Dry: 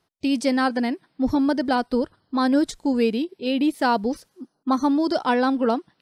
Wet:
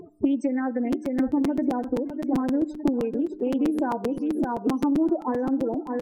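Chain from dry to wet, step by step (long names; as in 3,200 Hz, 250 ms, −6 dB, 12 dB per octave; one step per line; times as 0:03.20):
spectral peaks only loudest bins 8
octave-band graphic EQ 125/250/500/1,000/2,000/4,000/8,000 Hz −5/+3/+7/−6/+10/−12/+8 dB
in parallel at −1.5 dB: brickwall limiter −15.5 dBFS, peak gain reduction 9 dB
on the sum: hum removal 100.7 Hz, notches 4
upward compression, threshold −32 dBFS
repeating echo 607 ms, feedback 29%, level −12.5 dB
downward compressor 16 to 1, threshold −26 dBFS, peak gain reduction 18.5 dB
hollow resonant body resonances 320/880 Hz, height 8 dB, ringing for 20 ms
on a send at −18.5 dB: low-shelf EQ 220 Hz −9.5 dB + convolution reverb RT60 0.50 s, pre-delay 47 ms
on the sum: regular buffer underruns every 0.13 s, samples 256, repeat, from 0:00.92
highs frequency-modulated by the lows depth 0.13 ms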